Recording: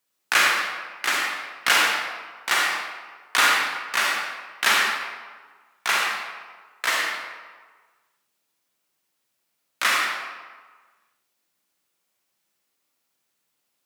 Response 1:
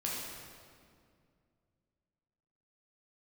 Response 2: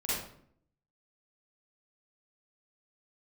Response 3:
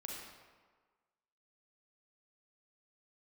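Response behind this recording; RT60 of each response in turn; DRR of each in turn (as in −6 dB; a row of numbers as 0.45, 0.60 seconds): 3; 2.2, 0.60, 1.5 seconds; −5.0, −10.5, −2.0 decibels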